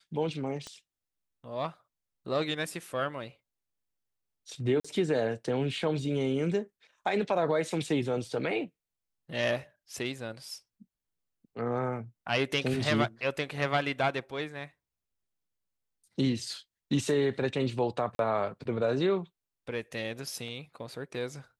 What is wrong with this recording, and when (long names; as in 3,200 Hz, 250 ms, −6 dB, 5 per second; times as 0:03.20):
0:00.67: click −27 dBFS
0:04.80–0:04.84: drop-out 45 ms
0:18.15–0:18.19: drop-out 42 ms